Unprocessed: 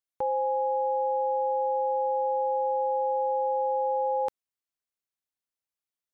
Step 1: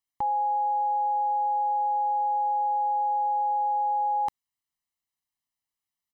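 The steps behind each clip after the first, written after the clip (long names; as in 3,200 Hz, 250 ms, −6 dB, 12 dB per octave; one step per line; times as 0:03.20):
comb filter 1 ms, depth 89%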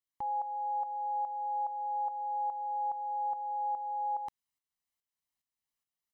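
brickwall limiter −27.5 dBFS, peak gain reduction 6 dB
shaped tremolo saw up 2.4 Hz, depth 65%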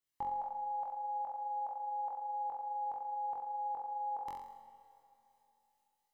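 on a send: flutter between parallel walls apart 3.8 metres, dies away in 0.63 s
on the sum: four-comb reverb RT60 3 s, combs from 31 ms, DRR 9 dB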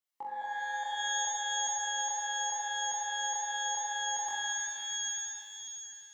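high-pass filter 320 Hz 12 dB per octave
reverb with rising layers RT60 3.1 s, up +12 semitones, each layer −2 dB, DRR 0.5 dB
level −2.5 dB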